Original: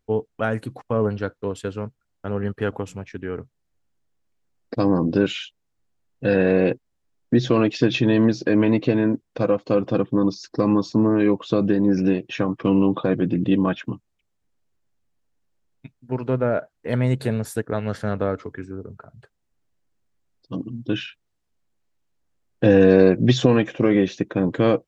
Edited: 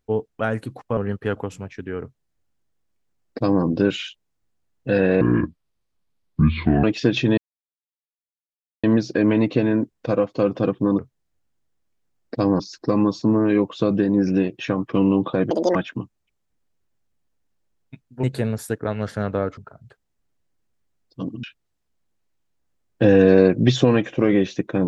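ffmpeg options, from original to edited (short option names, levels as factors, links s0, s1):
-filter_complex "[0:a]asplit=12[s0][s1][s2][s3][s4][s5][s6][s7][s8][s9][s10][s11];[s0]atrim=end=0.972[s12];[s1]atrim=start=2.328:end=6.574[s13];[s2]atrim=start=6.57:end=7.61,asetpts=PTS-STARTPTS,asetrate=28224,aresample=44100,atrim=end_sample=71662,asetpts=PTS-STARTPTS[s14];[s3]atrim=start=7.606:end=8.15,asetpts=PTS-STARTPTS,afade=t=out:st=0.54:d=0.004:c=hsin,apad=pad_dur=1.46[s15];[s4]atrim=start=8.15:end=10.302,asetpts=PTS-STARTPTS,afade=t=in:d=0.004:c=hsin[s16];[s5]atrim=start=3.378:end=4.992[s17];[s6]atrim=start=10.298:end=13.214[s18];[s7]atrim=start=13.21:end=13.67,asetpts=PTS-STARTPTS,asetrate=81585,aresample=44100,atrim=end_sample=10965,asetpts=PTS-STARTPTS[s19];[s8]atrim=start=13.666:end=16.152[s20];[s9]atrim=start=17.098:end=18.442[s21];[s10]atrim=start=18.898:end=20.762[s22];[s11]atrim=start=21.048[s23];[s12][s13]acrossfade=d=0.004:c1=hsin:c2=hsin[s24];[s24][s14]acrossfade=d=0.004:c1=hsin:c2=hsin[s25];[s15][s16]concat=n=2:v=0:a=1[s26];[s25][s26]acrossfade=d=0.004:c1=hsin:c2=hsin[s27];[s27][s17]acrossfade=d=0.004:c1=hsin:c2=hsin[s28];[s28][s18]acrossfade=d=0.004:c1=hsin:c2=hsin[s29];[s29][s19]acrossfade=d=0.004:c1=hsin:c2=hsin[s30];[s30][s20]acrossfade=d=0.004:c1=hsin:c2=hsin[s31];[s31][s21]acrossfade=d=0.004:c1=hsin:c2=hsin[s32];[s32][s22]acrossfade=d=0.004:c1=hsin:c2=hsin[s33];[s33][s23]acrossfade=d=0.004:c1=hsin:c2=hsin"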